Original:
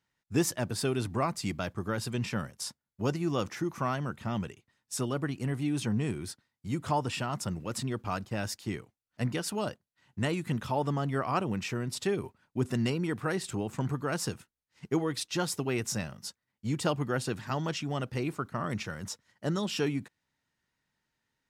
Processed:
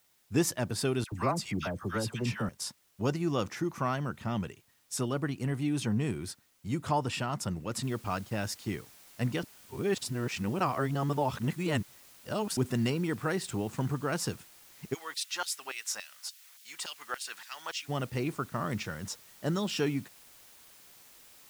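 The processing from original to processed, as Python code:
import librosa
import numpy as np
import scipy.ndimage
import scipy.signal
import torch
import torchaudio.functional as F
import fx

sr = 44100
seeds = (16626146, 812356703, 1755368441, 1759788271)

y = fx.dispersion(x, sr, late='lows', ms=79.0, hz=1200.0, at=(1.04, 2.49))
y = fx.noise_floor_step(y, sr, seeds[0], at_s=7.83, before_db=-69, after_db=-56, tilt_db=0.0)
y = fx.filter_lfo_highpass(y, sr, shape='saw_down', hz=3.5, low_hz=840.0, high_hz=3700.0, q=0.98, at=(14.93, 17.88), fade=0.02)
y = fx.edit(y, sr, fx.reverse_span(start_s=9.43, length_s=3.14), tone=tone)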